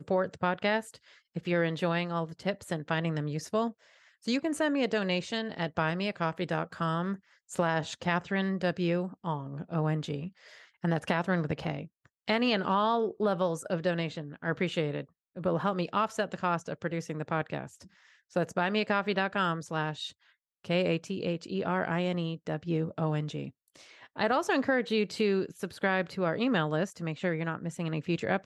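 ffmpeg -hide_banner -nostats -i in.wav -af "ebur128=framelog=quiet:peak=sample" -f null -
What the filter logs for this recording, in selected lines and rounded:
Integrated loudness:
  I:         -31.1 LUFS
  Threshold: -41.5 LUFS
Loudness range:
  LRA:         2.7 LU
  Threshold: -51.5 LUFS
  LRA low:   -32.6 LUFS
  LRA high:  -29.9 LUFS
Sample peak:
  Peak:      -13.3 dBFS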